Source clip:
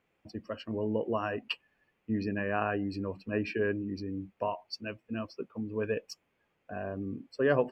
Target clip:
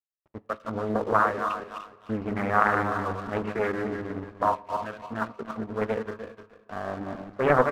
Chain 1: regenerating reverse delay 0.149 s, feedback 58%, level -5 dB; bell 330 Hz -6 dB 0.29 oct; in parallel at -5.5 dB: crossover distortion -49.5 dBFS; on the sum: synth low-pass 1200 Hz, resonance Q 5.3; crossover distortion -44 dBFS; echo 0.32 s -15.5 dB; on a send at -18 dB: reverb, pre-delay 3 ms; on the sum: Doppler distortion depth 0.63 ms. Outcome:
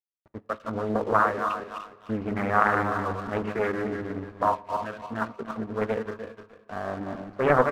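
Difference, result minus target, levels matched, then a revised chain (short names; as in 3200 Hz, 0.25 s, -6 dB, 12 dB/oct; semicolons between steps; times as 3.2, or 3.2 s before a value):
first crossover distortion: distortion -8 dB
regenerating reverse delay 0.149 s, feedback 58%, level -5 dB; bell 330 Hz -6 dB 0.29 oct; in parallel at -5.5 dB: crossover distortion -41 dBFS; on the sum: synth low-pass 1200 Hz, resonance Q 5.3; crossover distortion -44 dBFS; echo 0.32 s -15.5 dB; on a send at -18 dB: reverb, pre-delay 3 ms; on the sum: Doppler distortion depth 0.63 ms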